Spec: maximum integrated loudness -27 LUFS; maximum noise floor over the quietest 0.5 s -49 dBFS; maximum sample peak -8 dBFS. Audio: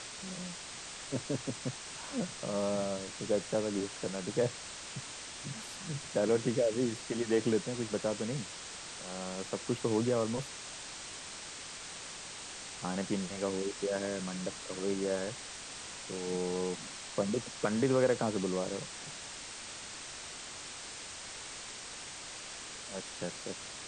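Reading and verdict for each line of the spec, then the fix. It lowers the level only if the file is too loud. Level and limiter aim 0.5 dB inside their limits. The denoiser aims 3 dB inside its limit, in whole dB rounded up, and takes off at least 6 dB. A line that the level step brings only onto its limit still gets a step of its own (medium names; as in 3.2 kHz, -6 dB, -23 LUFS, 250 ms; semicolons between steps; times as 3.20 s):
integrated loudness -36.0 LUFS: pass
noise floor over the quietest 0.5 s -45 dBFS: fail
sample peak -17.0 dBFS: pass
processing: noise reduction 7 dB, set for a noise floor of -45 dBFS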